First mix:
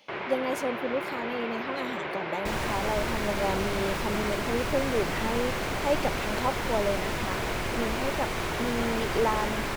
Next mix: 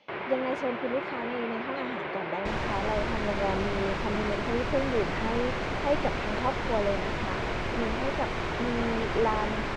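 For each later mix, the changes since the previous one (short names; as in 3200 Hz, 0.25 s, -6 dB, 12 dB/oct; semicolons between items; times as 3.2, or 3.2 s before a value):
speech: add high shelf 4800 Hz -7 dB; master: add air absorption 130 m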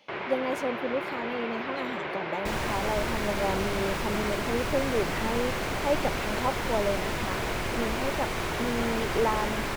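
master: remove air absorption 130 m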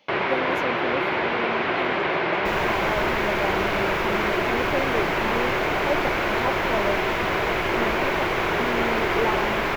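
first sound +10.5 dB; master: add bell 8800 Hz -13 dB 0.35 oct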